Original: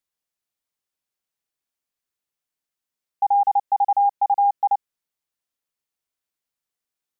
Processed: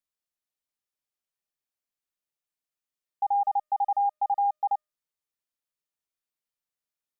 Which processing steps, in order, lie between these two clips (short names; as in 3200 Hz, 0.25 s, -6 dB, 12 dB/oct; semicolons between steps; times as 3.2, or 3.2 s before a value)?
resonator 610 Hz, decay 0.39 s, mix 70%; gain +3.5 dB